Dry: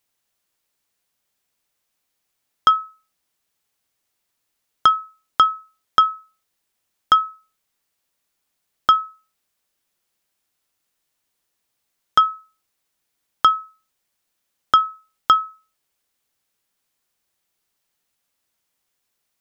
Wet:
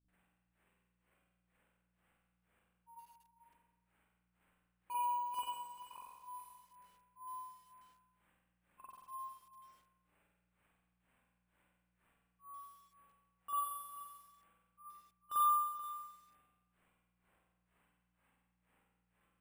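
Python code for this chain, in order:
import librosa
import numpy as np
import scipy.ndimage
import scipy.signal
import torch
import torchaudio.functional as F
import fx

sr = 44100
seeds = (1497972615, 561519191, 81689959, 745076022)

p1 = fx.pitch_glide(x, sr, semitones=-6.5, runs='ending unshifted')
p2 = scipy.signal.sosfilt(scipy.signal.butter(4, 2600.0, 'lowpass', fs=sr, output='sos'), p1)
p3 = fx.low_shelf(p2, sr, hz=360.0, db=-2.5)
p4 = fx.rider(p3, sr, range_db=10, speed_s=2.0)
p5 = p3 + (p4 * 10.0 ** (3.0 / 20.0))
p6 = fx.auto_swell(p5, sr, attack_ms=733.0)
p7 = fx.granulator(p6, sr, seeds[0], grain_ms=259.0, per_s=2.1, spray_ms=100.0, spread_st=0)
p8 = fx.add_hum(p7, sr, base_hz=60, snr_db=28)
p9 = 10.0 ** (-33.0 / 20.0) * np.tanh(p8 / 10.0 ** (-33.0 / 20.0))
p10 = p9 + fx.echo_multitap(p9, sr, ms=(48, 108, 435), db=(-11.5, -17.0, -12.5), dry=0)
p11 = fx.rev_spring(p10, sr, rt60_s=1.1, pass_ms=(44,), chirp_ms=80, drr_db=-9.0)
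p12 = np.repeat(p11[::4], 4)[:len(p11)]
p13 = fx.echo_crushed(p12, sr, ms=104, feedback_pct=35, bits=10, wet_db=-7.0)
y = p13 * 10.0 ** (-5.5 / 20.0)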